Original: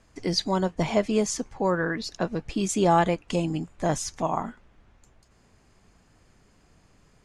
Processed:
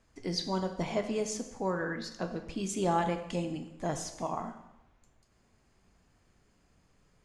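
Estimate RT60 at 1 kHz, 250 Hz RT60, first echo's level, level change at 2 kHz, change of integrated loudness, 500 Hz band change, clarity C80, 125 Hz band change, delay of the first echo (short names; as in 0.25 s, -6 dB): 0.90 s, 0.85 s, none, -7.5 dB, -8.0 dB, -7.5 dB, 11.5 dB, -8.0 dB, none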